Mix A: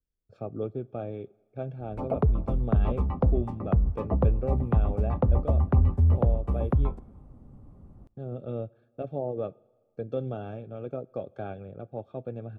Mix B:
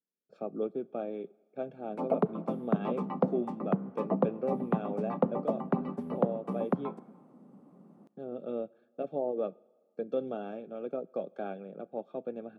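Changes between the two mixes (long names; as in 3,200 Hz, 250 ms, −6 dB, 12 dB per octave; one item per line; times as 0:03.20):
background: send +6.0 dB
master: add elliptic high-pass filter 180 Hz, stop band 60 dB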